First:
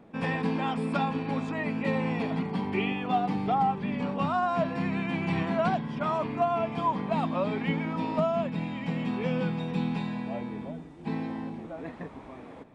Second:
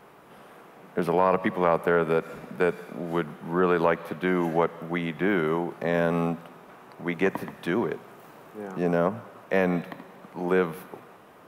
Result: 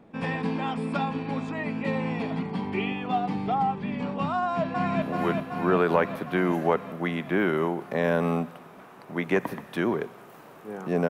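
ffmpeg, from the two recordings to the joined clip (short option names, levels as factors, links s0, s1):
-filter_complex "[0:a]apad=whole_dur=11.09,atrim=end=11.09,atrim=end=5.022[s0];[1:a]atrim=start=2.918:end=8.99[s1];[s0][s1]acrossfade=d=0.004:c1=hsin:c2=hsin,asplit=2[s2][s3];[s3]afade=t=in:st=4.36:d=0.01,afade=t=out:st=5.02:d=0.01,aecho=0:1:380|760|1140|1520|1900|2280|2660|3040|3420|3800|4180|4560:0.749894|0.524926|0.367448|0.257214|0.18005|0.126035|0.0882243|0.061757|0.0432299|0.0302609|0.0211827|0.0148279[s4];[s2][s4]amix=inputs=2:normalize=0"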